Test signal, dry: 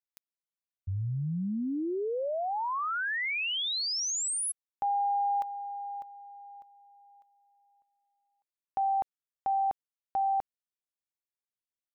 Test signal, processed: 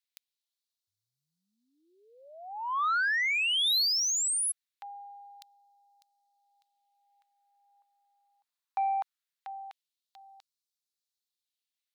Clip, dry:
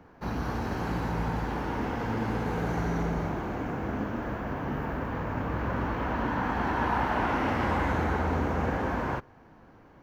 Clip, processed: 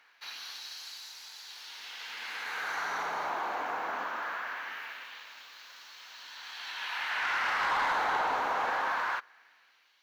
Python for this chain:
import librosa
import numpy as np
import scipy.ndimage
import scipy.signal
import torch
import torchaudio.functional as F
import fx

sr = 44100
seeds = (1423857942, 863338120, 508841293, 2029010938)

p1 = fx.peak_eq(x, sr, hz=4000.0, db=6.5, octaves=0.51)
p2 = fx.filter_lfo_highpass(p1, sr, shape='sine', hz=0.21, low_hz=870.0, high_hz=4800.0, q=1.4)
p3 = fx.fold_sine(p2, sr, drive_db=8, ceiling_db=-18.5)
p4 = p2 + (p3 * librosa.db_to_amplitude(-11.0))
y = p4 * librosa.db_to_amplitude(-3.5)